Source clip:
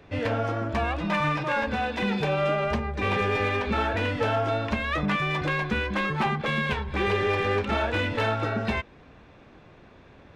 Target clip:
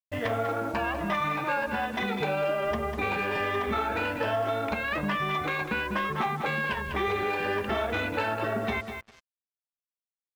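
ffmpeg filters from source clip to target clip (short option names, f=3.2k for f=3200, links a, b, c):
-af "afftfilt=real='re*pow(10,8/40*sin(2*PI*(1.3*log(max(b,1)*sr/1024/100)/log(2)-(1.2)*(pts-256)/sr)))':imag='im*pow(10,8/40*sin(2*PI*(1.3*log(max(b,1)*sr/1024/100)/log(2)-(1.2)*(pts-256)/sr)))':win_size=1024:overlap=0.75,anlmdn=39.8,lowshelf=f=220:g=-10.5,bandreject=f=510:w=13,aecho=1:1:198|396:0.316|0.0506,acompressor=threshold=-26dB:ratio=6,acrusher=bits=7:mix=0:aa=0.5,adynamicequalizer=threshold=0.00794:dfrequency=1700:dqfactor=0.7:tfrequency=1700:tqfactor=0.7:attack=5:release=100:ratio=0.375:range=1.5:mode=cutabove:tftype=highshelf,volume=2dB"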